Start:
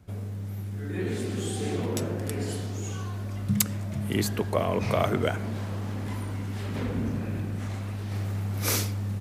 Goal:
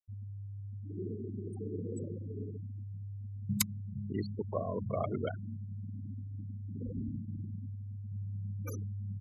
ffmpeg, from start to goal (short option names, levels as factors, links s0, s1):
-af "agate=range=0.178:threshold=0.112:ratio=16:detection=peak,afftfilt=real='re*gte(hypot(re,im),0.02)':imag='im*gte(hypot(re,im),0.02)':win_size=1024:overlap=0.75,volume=2.11"